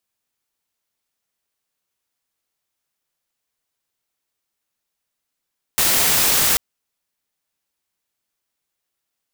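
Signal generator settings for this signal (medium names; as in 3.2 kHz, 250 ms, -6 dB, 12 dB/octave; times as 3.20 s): noise white, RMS -16.5 dBFS 0.79 s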